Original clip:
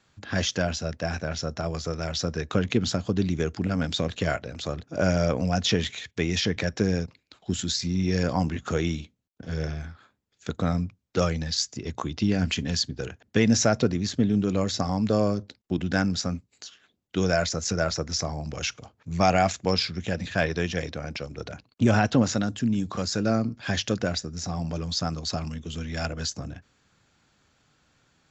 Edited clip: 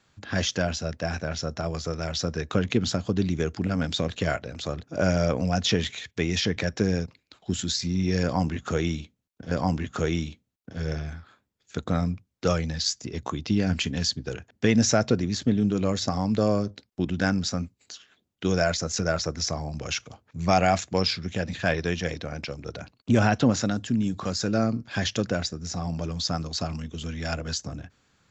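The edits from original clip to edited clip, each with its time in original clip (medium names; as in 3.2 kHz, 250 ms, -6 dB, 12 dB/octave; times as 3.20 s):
8.23–9.51 s: loop, 2 plays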